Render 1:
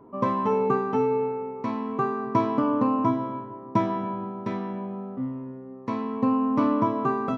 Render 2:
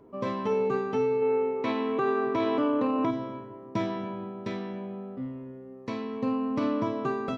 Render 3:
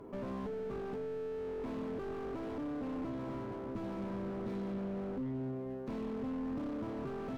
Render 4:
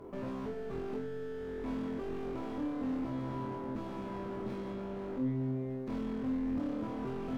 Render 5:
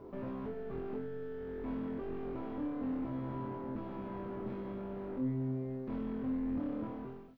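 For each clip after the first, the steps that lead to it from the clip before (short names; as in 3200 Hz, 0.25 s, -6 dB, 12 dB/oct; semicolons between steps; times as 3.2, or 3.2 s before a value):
spectral gain 1.22–3.11, 250–4000 Hz +8 dB; graphic EQ 125/250/1000/4000 Hz -5/-6/-11/+4 dB; limiter -20.5 dBFS, peak gain reduction 10.5 dB; gain +2 dB
compressor 10:1, threshold -36 dBFS, peak gain reduction 13.5 dB; tube stage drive 40 dB, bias 0.7; slew limiter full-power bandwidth 2.2 Hz; gain +8 dB
flutter echo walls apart 4 m, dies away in 0.35 s
ending faded out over 0.55 s; added noise violet -58 dBFS; air absorption 340 m; gain -1 dB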